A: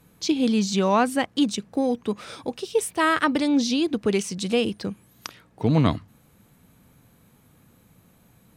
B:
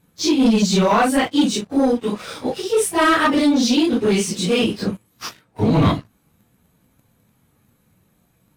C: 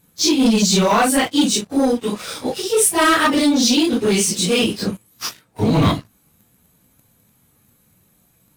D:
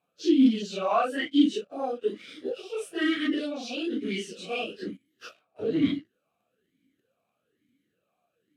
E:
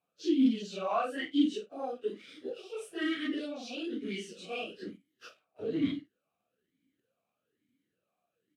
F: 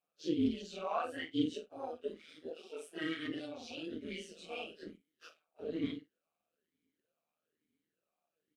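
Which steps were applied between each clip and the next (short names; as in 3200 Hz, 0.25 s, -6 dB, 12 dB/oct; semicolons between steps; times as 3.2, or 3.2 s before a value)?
phase scrambler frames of 0.1 s; sample leveller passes 2
high shelf 4500 Hz +10.5 dB
vowel sweep a-i 1.1 Hz
doubler 49 ms -13.5 dB; gain -6.5 dB
AM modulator 160 Hz, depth 45%; low shelf 140 Hz -8.5 dB; gain -2 dB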